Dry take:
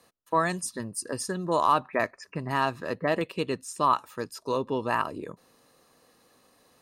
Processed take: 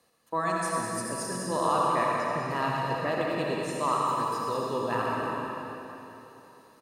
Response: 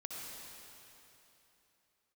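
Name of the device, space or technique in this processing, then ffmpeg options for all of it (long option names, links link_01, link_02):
cave: -filter_complex "[0:a]aecho=1:1:199:0.376[link_01];[1:a]atrim=start_sample=2205[link_02];[link_01][link_02]afir=irnorm=-1:irlink=0"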